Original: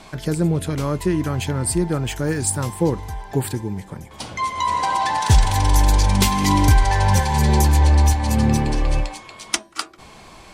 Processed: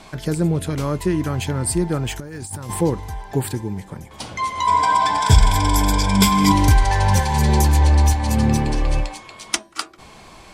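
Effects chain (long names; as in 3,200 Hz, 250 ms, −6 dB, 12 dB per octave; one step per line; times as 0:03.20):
0:02.20–0:02.81: compressor whose output falls as the input rises −31 dBFS, ratio −1
0:04.67–0:06.52: EQ curve with evenly spaced ripples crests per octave 1.7, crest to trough 12 dB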